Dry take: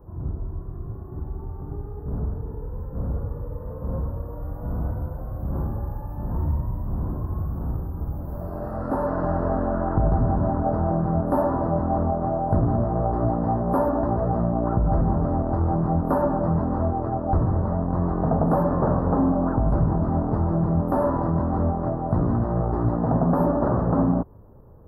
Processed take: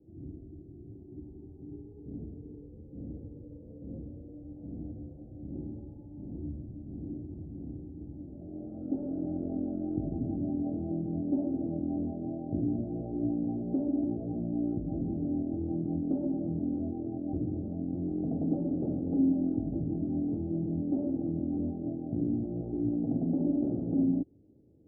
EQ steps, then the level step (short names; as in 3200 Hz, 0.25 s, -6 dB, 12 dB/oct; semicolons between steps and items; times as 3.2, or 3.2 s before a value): vocal tract filter u; HPF 76 Hz; Butterworth band-stop 980 Hz, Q 1.3; 0.0 dB